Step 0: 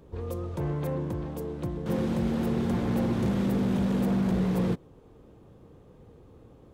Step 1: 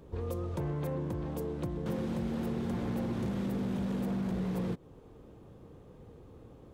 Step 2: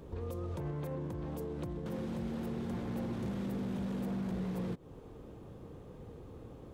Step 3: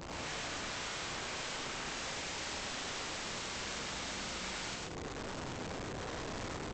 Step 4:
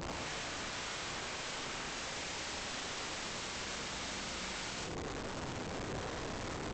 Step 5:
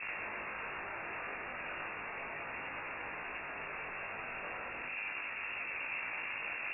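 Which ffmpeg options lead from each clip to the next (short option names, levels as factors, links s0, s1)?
-af "acompressor=threshold=0.0282:ratio=6"
-af "alimiter=level_in=3.35:limit=0.0631:level=0:latency=1:release=184,volume=0.299,volume=1.41"
-af "aresample=16000,aeval=exprs='(mod(178*val(0)+1,2)-1)/178':c=same,aresample=44100,aecho=1:1:102|134.1|201.2:0.891|0.708|0.316,volume=1.88"
-af "alimiter=level_in=5.01:limit=0.0631:level=0:latency=1:release=20,volume=0.2,volume=1.78"
-af "aemphasis=mode=production:type=50fm,lowpass=f=2400:t=q:w=0.5098,lowpass=f=2400:t=q:w=0.6013,lowpass=f=2400:t=q:w=0.9,lowpass=f=2400:t=q:w=2.563,afreqshift=-2800,flanger=delay=18.5:depth=2.1:speed=0.35,volume=1.58"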